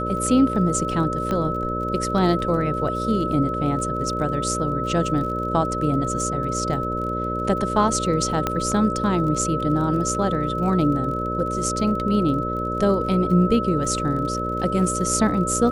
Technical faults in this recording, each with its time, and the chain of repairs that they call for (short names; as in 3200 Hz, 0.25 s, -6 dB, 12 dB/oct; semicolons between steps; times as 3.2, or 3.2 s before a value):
buzz 60 Hz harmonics 10 -28 dBFS
crackle 37/s -32 dBFS
tone 1300 Hz -26 dBFS
1.31 pop -13 dBFS
8.47 pop -8 dBFS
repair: de-click; de-hum 60 Hz, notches 10; notch 1300 Hz, Q 30